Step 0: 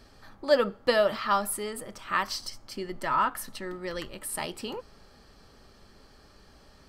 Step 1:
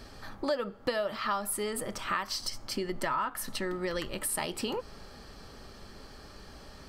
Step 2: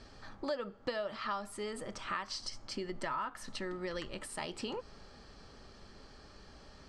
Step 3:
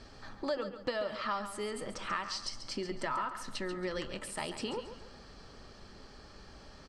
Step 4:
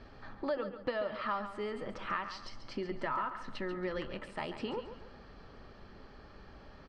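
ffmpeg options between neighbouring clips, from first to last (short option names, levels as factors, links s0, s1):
-af "acompressor=threshold=0.0158:ratio=5,volume=2.11"
-af "lowpass=f=7800:w=0.5412,lowpass=f=7800:w=1.3066,volume=0.501"
-af "aecho=1:1:138|276|414|552:0.299|0.102|0.0345|0.0117,volume=1.26"
-af "lowpass=2700"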